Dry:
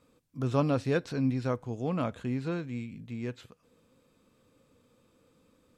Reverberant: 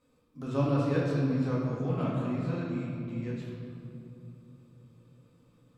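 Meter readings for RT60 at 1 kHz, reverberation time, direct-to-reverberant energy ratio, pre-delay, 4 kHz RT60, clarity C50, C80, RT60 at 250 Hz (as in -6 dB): 2.5 s, 2.7 s, -6.5 dB, 4 ms, 1.5 s, -1.0 dB, 1.0 dB, 3.9 s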